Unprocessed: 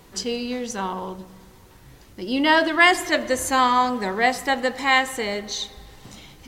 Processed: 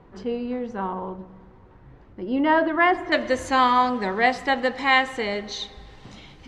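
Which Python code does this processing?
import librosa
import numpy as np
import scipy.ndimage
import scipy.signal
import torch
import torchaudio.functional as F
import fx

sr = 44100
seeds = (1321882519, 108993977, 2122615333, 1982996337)

y = fx.lowpass(x, sr, hz=fx.steps((0.0, 1400.0), (3.12, 4100.0)), slope=12)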